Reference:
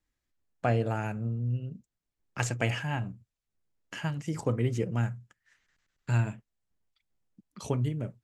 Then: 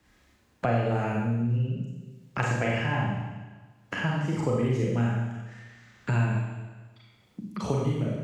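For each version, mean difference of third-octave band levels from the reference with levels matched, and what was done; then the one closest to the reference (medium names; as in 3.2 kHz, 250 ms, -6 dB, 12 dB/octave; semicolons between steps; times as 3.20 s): 7.0 dB: high-pass 61 Hz; treble shelf 5.7 kHz -11.5 dB; Schroeder reverb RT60 0.9 s, combs from 30 ms, DRR -4 dB; three bands compressed up and down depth 70%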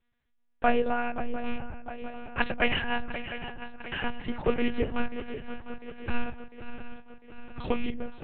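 10.5 dB: rattle on loud lows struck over -26 dBFS, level -33 dBFS; dynamic bell 190 Hz, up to -7 dB, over -42 dBFS, Q 0.79; on a send: shuffle delay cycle 703 ms, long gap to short 3:1, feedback 56%, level -11.5 dB; on the sum: monotone LPC vocoder at 8 kHz 240 Hz; trim +6.5 dB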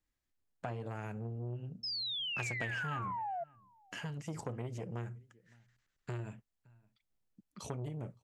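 4.0 dB: compression 6:1, threshold -30 dBFS, peak gain reduction 9 dB; painted sound fall, 1.83–3.44 s, 660–5300 Hz -34 dBFS; echo from a far wall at 97 m, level -27 dB; transformer saturation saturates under 1.1 kHz; trim -4 dB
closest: third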